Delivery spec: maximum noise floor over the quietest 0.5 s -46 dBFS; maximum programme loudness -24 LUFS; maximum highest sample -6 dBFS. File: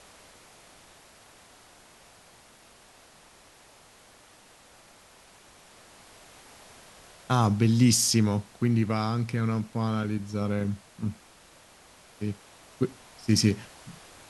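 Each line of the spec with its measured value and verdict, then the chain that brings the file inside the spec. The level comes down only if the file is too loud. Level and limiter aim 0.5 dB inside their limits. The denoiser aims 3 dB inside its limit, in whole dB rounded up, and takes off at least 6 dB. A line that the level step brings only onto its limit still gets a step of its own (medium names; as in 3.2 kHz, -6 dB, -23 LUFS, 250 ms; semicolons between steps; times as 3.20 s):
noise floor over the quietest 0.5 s -55 dBFS: pass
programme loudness -26.5 LUFS: pass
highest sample -9.0 dBFS: pass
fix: none needed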